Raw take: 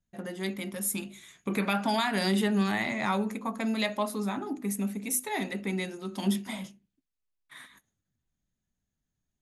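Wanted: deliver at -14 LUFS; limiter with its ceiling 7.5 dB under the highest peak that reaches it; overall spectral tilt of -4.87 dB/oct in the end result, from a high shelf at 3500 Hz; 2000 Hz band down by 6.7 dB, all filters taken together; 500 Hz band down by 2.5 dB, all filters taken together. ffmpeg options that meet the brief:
-af "equalizer=f=500:t=o:g=-3,equalizer=f=2k:t=o:g=-7,highshelf=f=3.5k:g=-3,volume=20.5dB,alimiter=limit=-4.5dB:level=0:latency=1"

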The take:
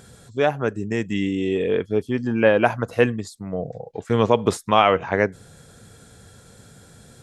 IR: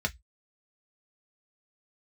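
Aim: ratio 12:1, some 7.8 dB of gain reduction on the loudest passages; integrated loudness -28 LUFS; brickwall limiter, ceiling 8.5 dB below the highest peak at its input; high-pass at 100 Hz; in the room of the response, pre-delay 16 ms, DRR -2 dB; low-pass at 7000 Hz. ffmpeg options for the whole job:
-filter_complex "[0:a]highpass=100,lowpass=7k,acompressor=threshold=-18dB:ratio=12,alimiter=limit=-14.5dB:level=0:latency=1,asplit=2[a][b];[1:a]atrim=start_sample=2205,adelay=16[c];[b][c]afir=irnorm=-1:irlink=0,volume=-5dB[d];[a][d]amix=inputs=2:normalize=0,volume=-4.5dB"

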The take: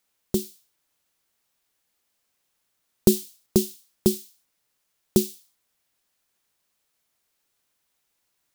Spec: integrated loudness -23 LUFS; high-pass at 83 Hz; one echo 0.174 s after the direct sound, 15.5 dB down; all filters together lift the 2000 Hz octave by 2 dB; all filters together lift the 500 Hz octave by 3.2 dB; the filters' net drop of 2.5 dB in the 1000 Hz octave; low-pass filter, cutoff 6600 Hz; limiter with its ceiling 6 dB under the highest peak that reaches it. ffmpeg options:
-af "highpass=83,lowpass=6.6k,equalizer=f=500:t=o:g=6.5,equalizer=f=1k:t=o:g=-8,equalizer=f=2k:t=o:g=4.5,alimiter=limit=-7dB:level=0:latency=1,aecho=1:1:174:0.168,volume=4dB"

